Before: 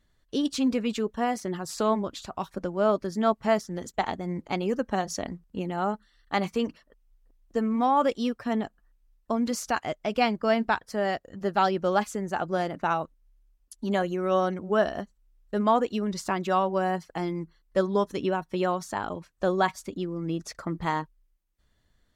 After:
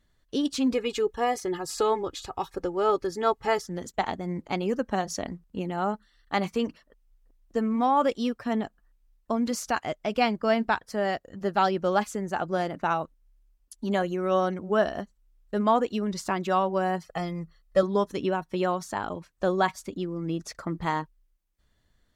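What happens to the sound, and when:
0:00.73–0:03.67: comb filter 2.4 ms, depth 76%
0:17.04–0:17.83: comb filter 1.6 ms

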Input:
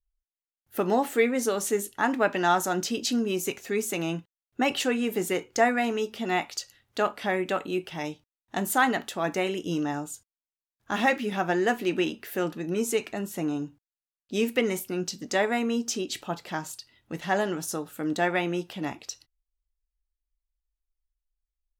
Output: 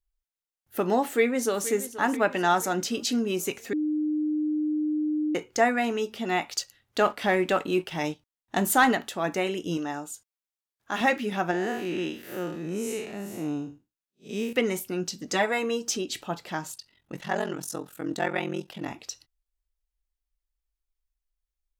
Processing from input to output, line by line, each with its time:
0:01.05–0:01.68: delay throw 480 ms, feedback 55%, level −14.5 dB
0:03.73–0:05.35: beep over 304 Hz −23.5 dBFS
0:06.50–0:08.95: leveller curve on the samples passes 1
0:09.77–0:11.01: low-shelf EQ 220 Hz −11 dB
0:11.51–0:14.53: spectrum smeared in time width 145 ms
0:15.27–0:15.97: comb filter 6.1 ms, depth 73%
0:16.74–0:18.90: ring modulation 22 Hz

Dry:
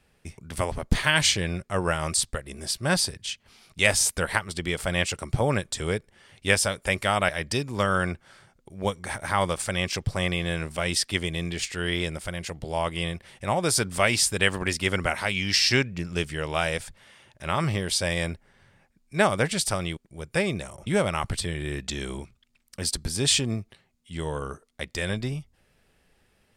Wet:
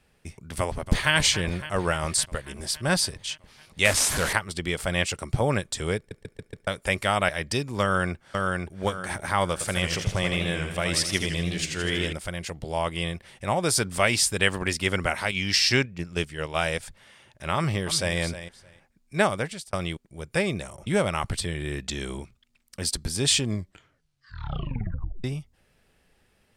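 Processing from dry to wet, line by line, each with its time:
0:00.58–0:01.13: delay throw 280 ms, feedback 75%, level −13 dB
0:03.85–0:04.33: linear delta modulator 64 kbit/s, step −21 dBFS
0:05.97: stutter in place 0.14 s, 5 plays
0:07.82–0:08.77: delay throw 520 ms, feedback 35%, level −2.5 dB
0:09.52–0:12.13: feedback echo with a swinging delay time 81 ms, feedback 59%, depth 139 cents, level −7 dB
0:15.31–0:16.83: noise gate −31 dBFS, range −6 dB
0:17.55–0:18.17: delay throw 310 ms, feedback 15%, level −12 dB
0:19.18–0:19.73: fade out
0:23.43: tape stop 1.81 s

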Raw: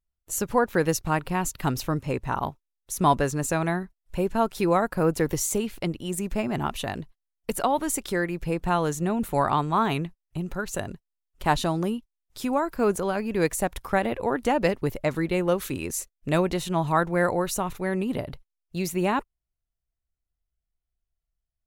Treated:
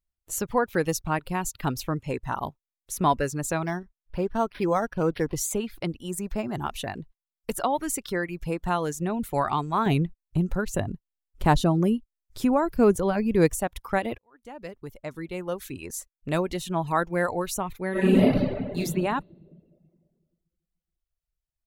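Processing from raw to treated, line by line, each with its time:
0:03.65–0:05.36: linearly interpolated sample-rate reduction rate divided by 6×
0:06.02–0:06.64: dynamic equaliser 2,200 Hz, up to −4 dB, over −44 dBFS, Q 0.91
0:09.86–0:13.59: low-shelf EQ 450 Hz +10 dB
0:14.18–0:16.64: fade in
0:17.91–0:18.77: thrown reverb, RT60 1.9 s, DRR −12 dB
whole clip: reverb reduction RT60 0.64 s; level −1.5 dB

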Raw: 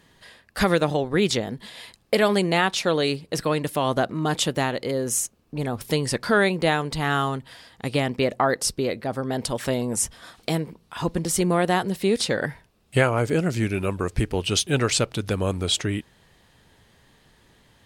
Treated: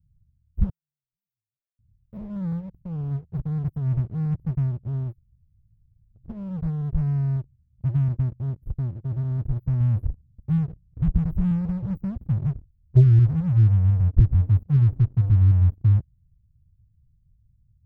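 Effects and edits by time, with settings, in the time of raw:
0:00.69–0:01.79: inverse Chebyshev high-pass filter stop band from 870 Hz, stop band 60 dB
0:05.11–0:06.22: fill with room tone, crossfade 0.16 s
0:09.80–0:13.19: low-shelf EQ 210 Hz +5 dB
whole clip: inverse Chebyshev band-stop filter 670–8,700 Hz, stop band 80 dB; low-shelf EQ 370 Hz +7.5 dB; leveller curve on the samples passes 2

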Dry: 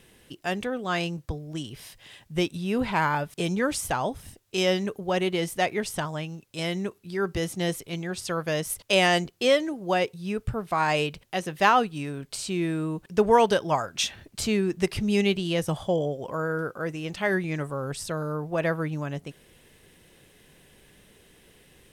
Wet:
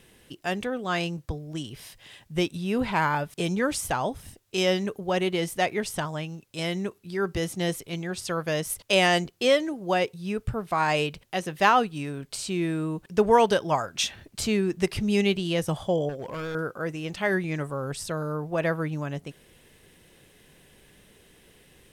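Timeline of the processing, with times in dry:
0:16.09–0:16.55: hard clipping −30.5 dBFS

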